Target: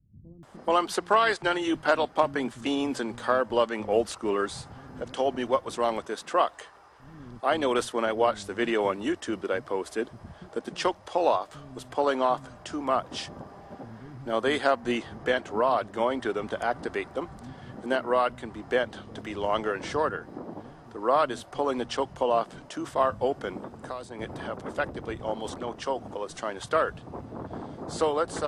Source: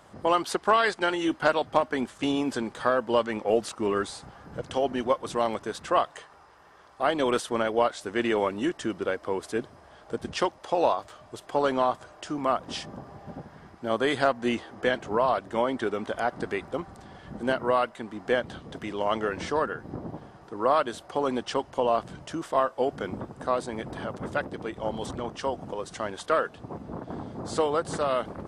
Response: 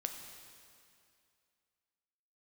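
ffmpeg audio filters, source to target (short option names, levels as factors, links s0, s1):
-filter_complex "[0:a]acrossover=split=180[s0][s1];[s1]adelay=430[s2];[s0][s2]amix=inputs=2:normalize=0,asettb=1/sr,asplit=3[s3][s4][s5];[s3]atrim=end=23.574[s6];[s4]atrim=start=23.57:end=24.19,asetpts=PTS-STARTPTS,afade=t=in:d=0.004:c=qsin,afade=t=out:st=0.616:d=0.004:c=qsin,acrossover=split=160|3400[s7][s8][s9];[s7]acompressor=threshold=0.00251:ratio=4[s10];[s8]acompressor=threshold=0.0178:ratio=4[s11];[s9]acompressor=threshold=0.00251:ratio=4[s12];[s10][s11][s12]amix=inputs=3:normalize=0[s13];[s5]atrim=start=24.186[s14];[s6][s13]acrossfade=d=0.004:c1=hsin:c2=qsin[s15];[s15][s14]acrossfade=d=0.004:c1=qsin:c2=hsin"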